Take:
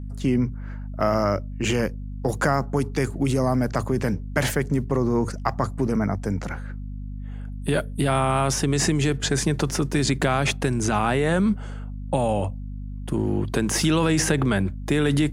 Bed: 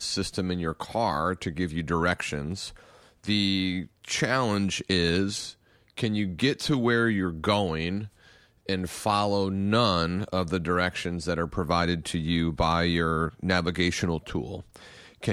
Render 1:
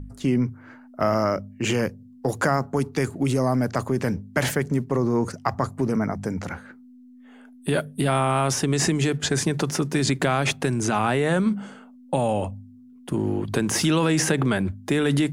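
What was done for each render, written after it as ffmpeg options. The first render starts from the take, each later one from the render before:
-af "bandreject=f=50:t=h:w=4,bandreject=f=100:t=h:w=4,bandreject=f=150:t=h:w=4,bandreject=f=200:t=h:w=4"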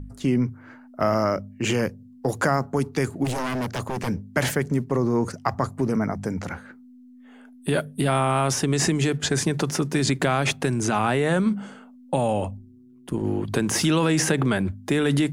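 -filter_complex "[0:a]asplit=3[a][b][c];[a]afade=t=out:st=3.24:d=0.02[d];[b]aeval=exprs='0.0891*(abs(mod(val(0)/0.0891+3,4)-2)-1)':c=same,afade=t=in:st=3.24:d=0.02,afade=t=out:st=4.07:d=0.02[e];[c]afade=t=in:st=4.07:d=0.02[f];[d][e][f]amix=inputs=3:normalize=0,asettb=1/sr,asplit=3[g][h][i];[g]atrim=end=12.574[j];[h]atrim=start=12.57:end=13.25,asetpts=PTS-STARTPTS,afade=t=in:d=0.004:c=qsin,afade=t=out:st=0.676:d=0.004:c=qsin,tremolo=f=120:d=0.571[k];[i]atrim=start=13.246[l];[j][k]acrossfade=d=0.004:c1=hsin:c2=qsin[m];[m][l]acrossfade=d=0.004:c1=qsin:c2=hsin"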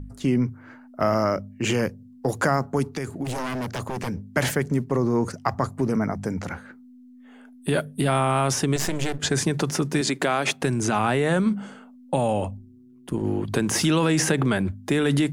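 -filter_complex "[0:a]asettb=1/sr,asplit=3[a][b][c];[a]atrim=end=2.864[d];[b]atrim=start=2.86:end=4.24,asetpts=PTS-STARTPTS,afade=t=in:d=0.004:c=qsin,afade=t=out:st=1.376:d=0.004:c=qsin,acompressor=threshold=-25dB:ratio=4:attack=3.2:release=140:knee=1:detection=peak[e];[c]atrim=start=4.236[f];[d][e]acrossfade=d=0.004:c1=hsin:c2=qsin[g];[g][f]acrossfade=d=0.004:c1=qsin:c2=hsin,asettb=1/sr,asplit=3[h][i][j];[h]atrim=end=8.764[k];[i]atrim=start=8.76:end=9.19,asetpts=PTS-STARTPTS,afade=t=in:d=0.004:c=qsin,afade=t=out:st=0.426:d=0.004:c=qsin,aeval=exprs='max(val(0),0)':c=same[l];[j]atrim=start=9.186[m];[k][l]acrossfade=d=0.004:c1=hsin:c2=qsin[n];[n][m]acrossfade=d=0.004:c1=qsin:c2=hsin,asettb=1/sr,asplit=3[o][p][q];[o]atrim=end=10.014[r];[p]atrim=start=10.01:end=10.62,asetpts=PTS-STARTPTS,afade=t=in:d=0.004:c=qsin,afade=t=out:st=0.606:d=0.004:c=qsin,highpass=240[s];[q]atrim=start=10.616[t];[r][s]acrossfade=d=0.004:c1=hsin:c2=qsin[u];[u][t]acrossfade=d=0.004:c1=qsin:c2=hsin"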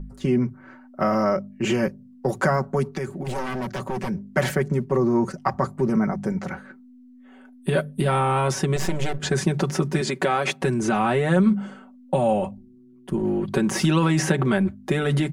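-af "highshelf=f=3.1k:g=-8,aecho=1:1:5.3:0.75"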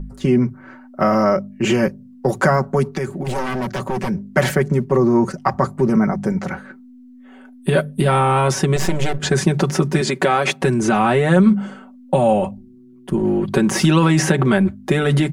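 -af "volume=5.5dB,alimiter=limit=-2dB:level=0:latency=1"

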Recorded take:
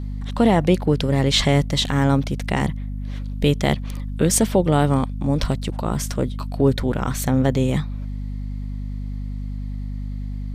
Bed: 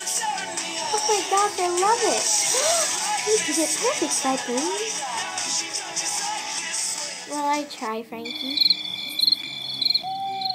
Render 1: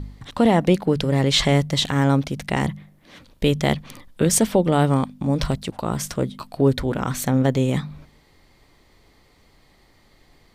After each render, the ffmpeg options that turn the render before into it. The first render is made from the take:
-af "bandreject=f=50:t=h:w=4,bandreject=f=100:t=h:w=4,bandreject=f=150:t=h:w=4,bandreject=f=200:t=h:w=4,bandreject=f=250:t=h:w=4"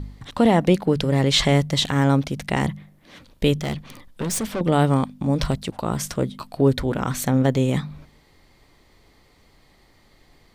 -filter_complex "[0:a]asettb=1/sr,asplit=3[a][b][c];[a]atrim=end=3.574[d];[b]atrim=start=3.57:end=4.61,asetpts=PTS-STARTPTS,afade=t=in:d=0.004:c=qsin,afade=t=out:st=1.036:d=0.004:c=qsin,aeval=exprs='(tanh(12.6*val(0)+0.3)-tanh(0.3))/12.6':c=same[e];[c]atrim=start=4.606[f];[d][e]acrossfade=d=0.004:c1=hsin:c2=qsin[g];[g][f]acrossfade=d=0.004:c1=qsin:c2=hsin"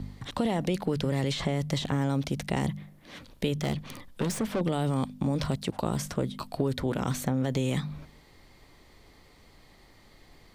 -filter_complex "[0:a]alimiter=limit=-13dB:level=0:latency=1:release=14,acrossover=split=80|1000|2500[a][b][c][d];[a]acompressor=threshold=-46dB:ratio=4[e];[b]acompressor=threshold=-25dB:ratio=4[f];[c]acompressor=threshold=-44dB:ratio=4[g];[d]acompressor=threshold=-38dB:ratio=4[h];[e][f][g][h]amix=inputs=4:normalize=0"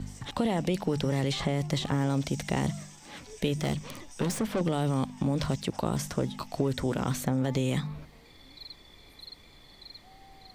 -filter_complex "[1:a]volume=-27.5dB[a];[0:a][a]amix=inputs=2:normalize=0"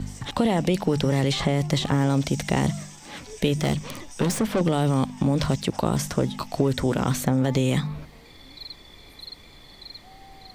-af "volume=6dB"

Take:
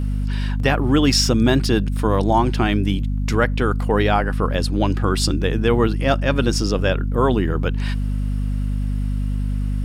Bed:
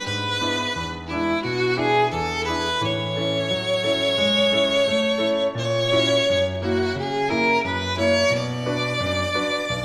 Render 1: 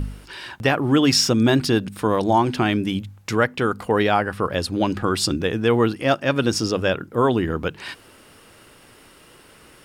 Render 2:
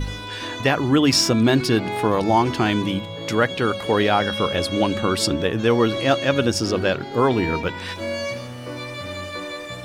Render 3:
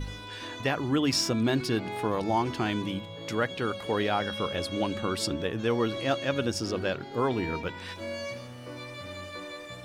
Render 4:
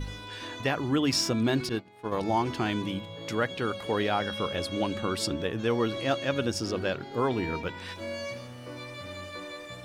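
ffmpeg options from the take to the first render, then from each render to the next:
-af "bandreject=f=50:t=h:w=4,bandreject=f=100:t=h:w=4,bandreject=f=150:t=h:w=4,bandreject=f=200:t=h:w=4,bandreject=f=250:t=h:w=4"
-filter_complex "[1:a]volume=-8dB[a];[0:a][a]amix=inputs=2:normalize=0"
-af "volume=-9dB"
-filter_complex "[0:a]asettb=1/sr,asplit=3[a][b][c];[a]atrim=end=1.694[d];[b]atrim=start=1.69:end=2.12,asetpts=PTS-STARTPTS,afade=t=in:d=0.004:c=qsin,afade=t=out:st=0.426:d=0.004:c=qsin,agate=range=-33dB:threshold=-23dB:ratio=3:release=100:detection=peak[e];[c]atrim=start=2.116[f];[d][e]acrossfade=d=0.004:c1=hsin:c2=qsin[g];[g][f]acrossfade=d=0.004:c1=qsin:c2=hsin"

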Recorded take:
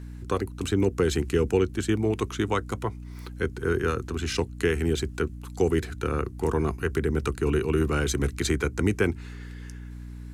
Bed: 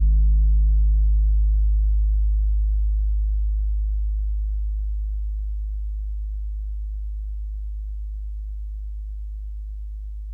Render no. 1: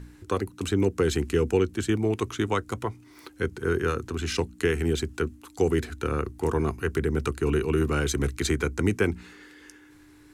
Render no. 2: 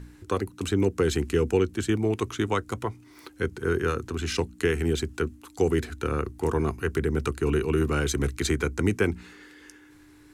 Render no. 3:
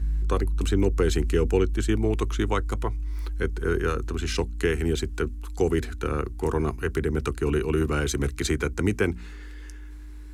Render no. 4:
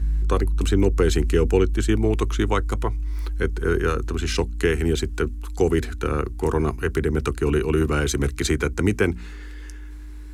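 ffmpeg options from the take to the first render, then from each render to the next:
-af "bandreject=f=60:t=h:w=4,bandreject=f=120:t=h:w=4,bandreject=f=180:t=h:w=4,bandreject=f=240:t=h:w=4"
-af anull
-filter_complex "[1:a]volume=-8.5dB[a];[0:a][a]amix=inputs=2:normalize=0"
-af "volume=3.5dB"

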